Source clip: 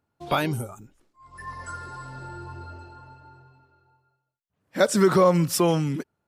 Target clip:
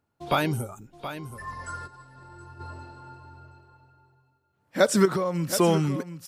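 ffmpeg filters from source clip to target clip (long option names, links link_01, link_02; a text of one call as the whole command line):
ffmpeg -i in.wav -filter_complex "[0:a]asettb=1/sr,asplit=3[link_01][link_02][link_03];[link_01]atrim=end=5.054[link_04];[link_02]atrim=start=5.05:end=5.58,asetpts=PTS-STARTPTS,afade=type=in:duration=0.004:curve=qsin,afade=type=out:start_time=0.526:duration=0.004:curve=qsin,acompressor=threshold=-23dB:ratio=10[link_05];[link_03]atrim=start=5.576[link_06];[link_04][link_05]acrossfade=duration=0.004:curve1=hsin:curve2=qsin[link_07];[link_07][link_06]acrossfade=duration=0.004:curve1=qsin:curve2=hsin,aecho=1:1:723:0.266,asplit=3[link_08][link_09][link_10];[link_08]afade=type=out:start_time=1.86:duration=0.02[link_11];[link_09]agate=range=-33dB:threshold=-30dB:ratio=3:detection=peak,afade=type=in:start_time=1.86:duration=0.02,afade=type=out:start_time=2.59:duration=0.02[link_12];[link_10]afade=type=in:start_time=2.59:duration=0.02[link_13];[link_11][link_12][link_13]amix=inputs=3:normalize=0" out.wav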